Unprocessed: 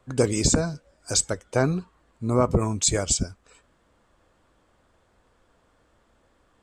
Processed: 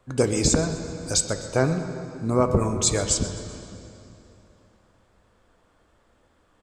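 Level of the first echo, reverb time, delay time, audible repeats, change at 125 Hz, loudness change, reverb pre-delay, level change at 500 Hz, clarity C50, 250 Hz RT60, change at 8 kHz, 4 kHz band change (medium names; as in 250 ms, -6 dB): -17.5 dB, 3.0 s, 128 ms, 1, +0.5 dB, +0.5 dB, 9 ms, +1.5 dB, 7.5 dB, 3.3 s, 0.0 dB, +0.5 dB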